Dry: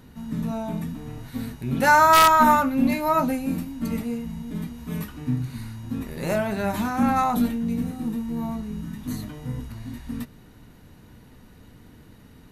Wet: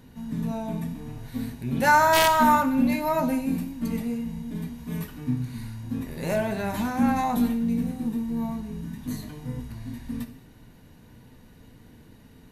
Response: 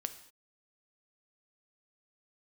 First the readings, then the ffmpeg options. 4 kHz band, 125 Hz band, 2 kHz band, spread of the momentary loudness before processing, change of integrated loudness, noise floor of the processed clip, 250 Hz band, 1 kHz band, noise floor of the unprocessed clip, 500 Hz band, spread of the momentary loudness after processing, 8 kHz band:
−1.5 dB, −1.5 dB, −2.0 dB, 18 LU, −2.5 dB, −51 dBFS, −0.5 dB, −3.5 dB, −50 dBFS, −1.0 dB, 17 LU, −2.0 dB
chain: -filter_complex "[0:a]bandreject=frequency=1300:width=8.5[link_01];[1:a]atrim=start_sample=2205[link_02];[link_01][link_02]afir=irnorm=-1:irlink=0,volume=-1dB"

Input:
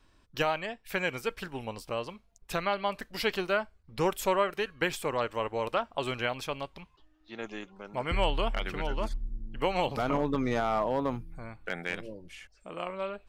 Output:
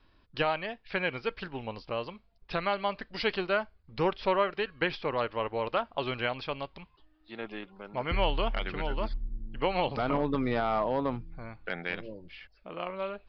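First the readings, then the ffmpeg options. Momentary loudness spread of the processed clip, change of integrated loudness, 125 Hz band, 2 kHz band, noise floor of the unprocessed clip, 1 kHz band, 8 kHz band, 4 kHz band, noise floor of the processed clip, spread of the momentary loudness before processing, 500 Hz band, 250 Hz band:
14 LU, 0.0 dB, 0.0 dB, 0.0 dB, −64 dBFS, 0.0 dB, below −20 dB, 0.0 dB, −65 dBFS, 14 LU, 0.0 dB, 0.0 dB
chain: -af "aresample=11025,aresample=44100"

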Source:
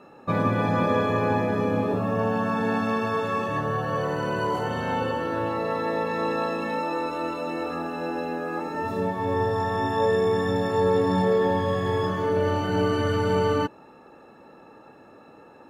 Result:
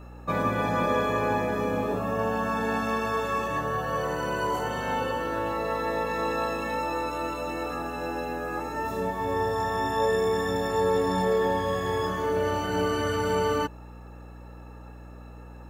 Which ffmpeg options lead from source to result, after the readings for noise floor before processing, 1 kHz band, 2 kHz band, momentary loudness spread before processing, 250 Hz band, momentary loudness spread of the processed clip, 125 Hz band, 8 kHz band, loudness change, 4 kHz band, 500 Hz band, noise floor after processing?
−50 dBFS, −1.0 dB, −0.5 dB, 7 LU, −4.5 dB, 19 LU, −5.5 dB, can't be measured, −2.5 dB, 0.0 dB, −2.5 dB, −44 dBFS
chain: -af "lowshelf=frequency=330:gain=-7.5,aeval=exprs='val(0)+0.00708*(sin(2*PI*60*n/s)+sin(2*PI*2*60*n/s)/2+sin(2*PI*3*60*n/s)/3+sin(2*PI*4*60*n/s)/4+sin(2*PI*5*60*n/s)/5)':channel_layout=same,aexciter=amount=2.3:drive=4.2:freq=6100"

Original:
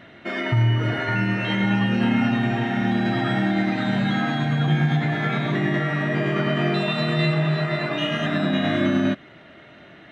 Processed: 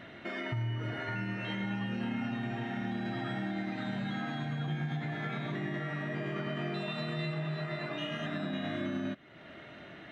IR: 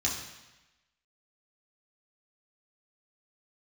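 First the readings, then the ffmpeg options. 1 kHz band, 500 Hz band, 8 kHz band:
−13.5 dB, −13.5 dB, can't be measured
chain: -af "acompressor=threshold=-40dB:ratio=2,volume=-2.5dB"

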